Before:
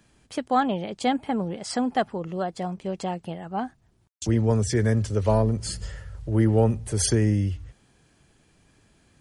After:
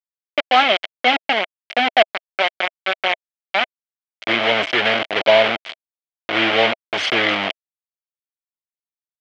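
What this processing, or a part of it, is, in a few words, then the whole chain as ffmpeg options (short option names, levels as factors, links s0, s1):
hand-held game console: -af "acrusher=bits=3:mix=0:aa=0.000001,highpass=440,equalizer=f=440:t=q:w=4:g=-4,equalizer=f=650:t=q:w=4:g=8,equalizer=f=980:t=q:w=4:g=-3,equalizer=f=1500:t=q:w=4:g=3,equalizer=f=2200:t=q:w=4:g=10,equalizer=f=3100:t=q:w=4:g=10,lowpass=f=4000:w=0.5412,lowpass=f=4000:w=1.3066,volume=1.88"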